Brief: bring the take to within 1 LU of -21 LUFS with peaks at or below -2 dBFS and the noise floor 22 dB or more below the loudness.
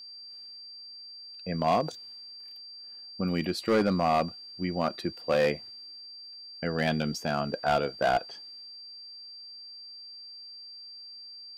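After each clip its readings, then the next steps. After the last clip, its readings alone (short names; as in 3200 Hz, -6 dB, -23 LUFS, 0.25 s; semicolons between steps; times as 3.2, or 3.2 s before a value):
clipped 0.6%; flat tops at -18.5 dBFS; steady tone 4700 Hz; tone level -43 dBFS; loudness -29.0 LUFS; peak -18.5 dBFS; loudness target -21.0 LUFS
-> clip repair -18.5 dBFS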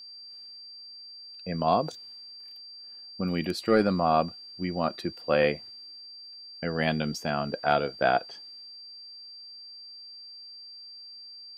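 clipped 0.0%; steady tone 4700 Hz; tone level -43 dBFS
-> notch 4700 Hz, Q 30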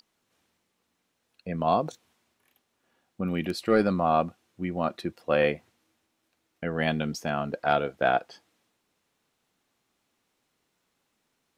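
steady tone none; loudness -27.5 LUFS; peak -9.5 dBFS; loudness target -21.0 LUFS
-> gain +6.5 dB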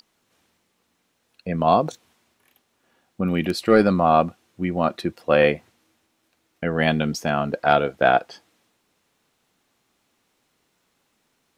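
loudness -21.0 LUFS; peak -3.0 dBFS; noise floor -70 dBFS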